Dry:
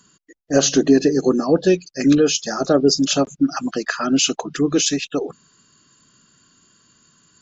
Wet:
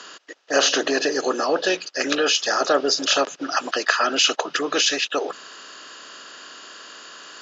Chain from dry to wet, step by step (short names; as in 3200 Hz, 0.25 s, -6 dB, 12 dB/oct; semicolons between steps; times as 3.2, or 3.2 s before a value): per-bin compression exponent 0.6; BPF 790–4200 Hz; gain +2.5 dB